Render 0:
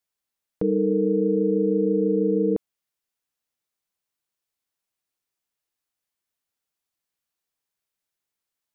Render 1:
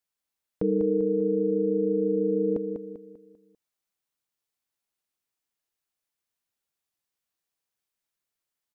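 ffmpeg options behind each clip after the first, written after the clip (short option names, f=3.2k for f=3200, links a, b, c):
-af "aecho=1:1:197|394|591|788|985:0.473|0.194|0.0795|0.0326|0.0134,volume=-2.5dB"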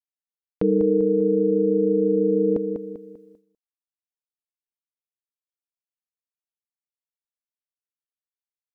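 -af "agate=range=-33dB:threshold=-51dB:ratio=3:detection=peak,volume=5dB"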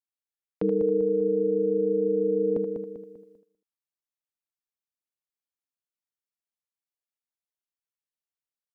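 -filter_complex "[0:a]acrossover=split=130[a][b];[a]asoftclip=type=tanh:threshold=-37dB[c];[b]aecho=1:1:79:0.376[d];[c][d]amix=inputs=2:normalize=0,volume=-4.5dB"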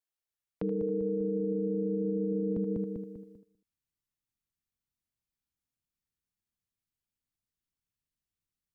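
-af "asubboost=boost=8.5:cutoff=200,alimiter=limit=-24dB:level=0:latency=1:release=71"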